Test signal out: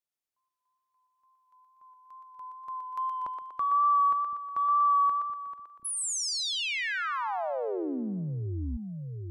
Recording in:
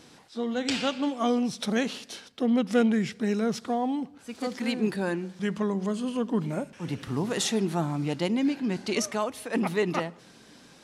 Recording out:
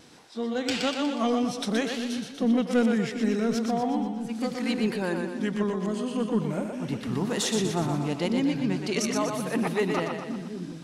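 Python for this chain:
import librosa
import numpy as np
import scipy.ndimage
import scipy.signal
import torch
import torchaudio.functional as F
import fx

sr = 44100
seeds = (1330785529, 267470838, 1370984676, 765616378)

y = 10.0 ** (-13.5 / 20.0) * np.tanh(x / 10.0 ** (-13.5 / 20.0))
y = fx.echo_split(y, sr, split_hz=320.0, low_ms=734, high_ms=121, feedback_pct=52, wet_db=-5)
y = fx.wow_flutter(y, sr, seeds[0], rate_hz=2.1, depth_cents=19.0)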